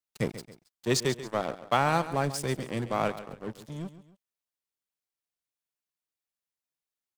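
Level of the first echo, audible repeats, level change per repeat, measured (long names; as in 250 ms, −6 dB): −14.0 dB, 2, −8.0 dB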